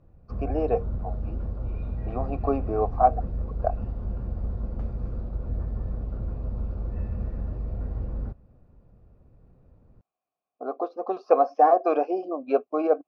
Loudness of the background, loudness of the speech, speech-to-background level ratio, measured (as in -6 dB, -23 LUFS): -33.5 LUFS, -25.5 LUFS, 8.0 dB